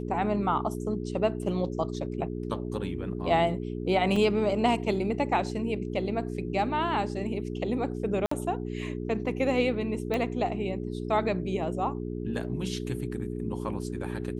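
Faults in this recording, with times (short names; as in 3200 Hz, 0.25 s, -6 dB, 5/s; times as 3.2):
hum 60 Hz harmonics 7 -34 dBFS
4.16 gap 3.7 ms
8.26–8.31 gap 54 ms
10.14 pop -17 dBFS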